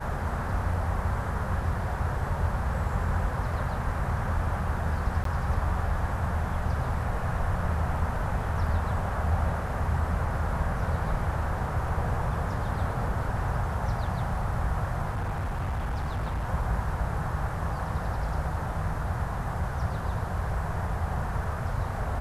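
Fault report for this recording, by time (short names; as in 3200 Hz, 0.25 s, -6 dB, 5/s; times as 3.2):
5.24–5.25 gap 13 ms
15.11–16.5 clipped -26.5 dBFS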